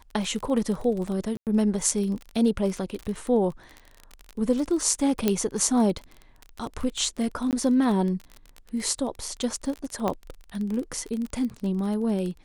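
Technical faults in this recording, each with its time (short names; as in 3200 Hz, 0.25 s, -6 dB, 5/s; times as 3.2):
crackle 30/s -30 dBFS
1.37–1.47 gap 98 ms
5.28 pop -8 dBFS
7.51–7.53 gap 18 ms
10.08 pop -13 dBFS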